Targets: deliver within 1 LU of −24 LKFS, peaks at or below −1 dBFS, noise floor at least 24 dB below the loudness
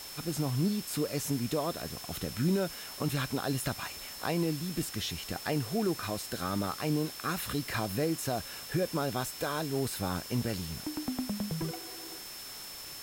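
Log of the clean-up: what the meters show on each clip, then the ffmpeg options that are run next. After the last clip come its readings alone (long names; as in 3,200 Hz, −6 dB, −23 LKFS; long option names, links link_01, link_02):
interfering tone 5,300 Hz; level of the tone −46 dBFS; background noise floor −44 dBFS; target noise floor −58 dBFS; integrated loudness −33.5 LKFS; sample peak −18.0 dBFS; target loudness −24.0 LKFS
→ -af "bandreject=frequency=5300:width=30"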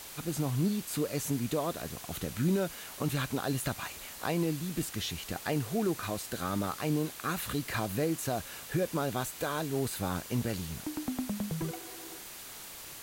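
interfering tone none found; background noise floor −46 dBFS; target noise floor −58 dBFS
→ -af "afftdn=noise_reduction=12:noise_floor=-46"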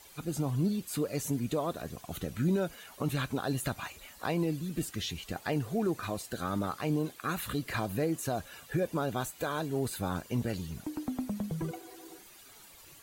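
background noise floor −54 dBFS; target noise floor −58 dBFS
→ -af "afftdn=noise_reduction=6:noise_floor=-54"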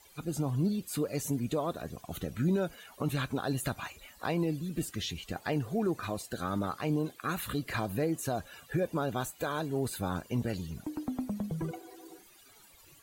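background noise floor −58 dBFS; integrated loudness −34.0 LKFS; sample peak −19.0 dBFS; target loudness −24.0 LKFS
→ -af "volume=10dB"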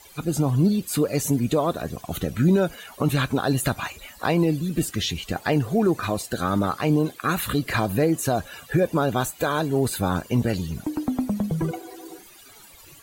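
integrated loudness −24.0 LKFS; sample peak −9.0 dBFS; background noise floor −48 dBFS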